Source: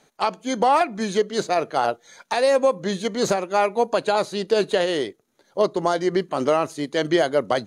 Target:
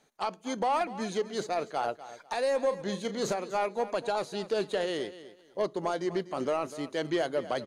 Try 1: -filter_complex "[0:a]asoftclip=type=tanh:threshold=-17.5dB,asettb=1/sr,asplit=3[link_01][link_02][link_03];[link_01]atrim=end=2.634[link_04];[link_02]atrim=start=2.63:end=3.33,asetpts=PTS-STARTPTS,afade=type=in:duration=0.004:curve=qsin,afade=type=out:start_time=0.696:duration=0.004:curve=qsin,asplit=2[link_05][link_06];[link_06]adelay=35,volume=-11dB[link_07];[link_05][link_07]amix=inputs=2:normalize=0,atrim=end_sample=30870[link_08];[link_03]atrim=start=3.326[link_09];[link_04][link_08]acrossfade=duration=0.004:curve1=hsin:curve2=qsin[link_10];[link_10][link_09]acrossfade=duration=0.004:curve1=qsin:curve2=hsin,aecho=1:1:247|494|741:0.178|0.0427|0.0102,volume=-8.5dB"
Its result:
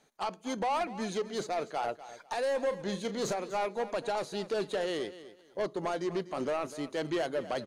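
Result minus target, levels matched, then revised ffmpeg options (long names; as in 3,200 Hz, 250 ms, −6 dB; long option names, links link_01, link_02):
soft clipping: distortion +8 dB
-filter_complex "[0:a]asoftclip=type=tanh:threshold=-11dB,asettb=1/sr,asplit=3[link_01][link_02][link_03];[link_01]atrim=end=2.634[link_04];[link_02]atrim=start=2.63:end=3.33,asetpts=PTS-STARTPTS,afade=type=in:duration=0.004:curve=qsin,afade=type=out:start_time=0.696:duration=0.004:curve=qsin,asplit=2[link_05][link_06];[link_06]adelay=35,volume=-11dB[link_07];[link_05][link_07]amix=inputs=2:normalize=0,atrim=end_sample=30870[link_08];[link_03]atrim=start=3.326[link_09];[link_04][link_08]acrossfade=duration=0.004:curve1=hsin:curve2=qsin[link_10];[link_10][link_09]acrossfade=duration=0.004:curve1=qsin:curve2=hsin,aecho=1:1:247|494|741:0.178|0.0427|0.0102,volume=-8.5dB"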